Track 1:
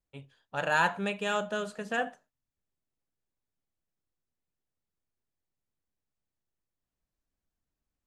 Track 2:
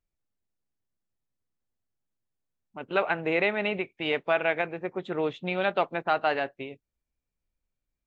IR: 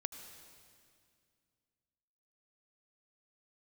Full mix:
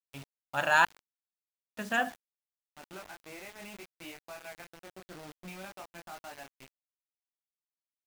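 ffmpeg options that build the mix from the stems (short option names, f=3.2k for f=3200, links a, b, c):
-filter_complex "[0:a]equalizer=f=160:t=o:w=0.23:g=-12,bandreject=f=60:t=h:w=6,bandreject=f=120:t=h:w=6,bandreject=f=180:t=h:w=6,bandreject=f=240:t=h:w=6,bandreject=f=300:t=h:w=6,bandreject=f=360:t=h:w=6,bandreject=f=420:t=h:w=6,bandreject=f=480:t=h:w=6,volume=2.5dB,asplit=3[a][b][c];[a]atrim=end=0.85,asetpts=PTS-STARTPTS,afade=t=out:st=0.846:d=0.004:c=hsin[d];[b]atrim=start=0.85:end=1.77,asetpts=PTS-STARTPTS,volume=0[e];[c]atrim=start=1.77,asetpts=PTS-STARTPTS,afade=t=in:d=0.004:c=hsin[f];[d][e][f]concat=n=3:v=0:a=1,asplit=2[g][h];[h]volume=-21.5dB[i];[1:a]highshelf=f=3.7k:g=-9,alimiter=limit=-22.5dB:level=0:latency=1:release=407,flanger=delay=22.5:depth=4.6:speed=0.47,volume=-8.5dB,asplit=2[j][k];[k]volume=-18.5dB[l];[2:a]atrim=start_sample=2205[m];[i][l]amix=inputs=2:normalize=0[n];[n][m]afir=irnorm=-1:irlink=0[o];[g][j][o]amix=inputs=3:normalize=0,equalizer=f=460:w=3:g=-10.5,acrusher=bits=7:mix=0:aa=0.000001"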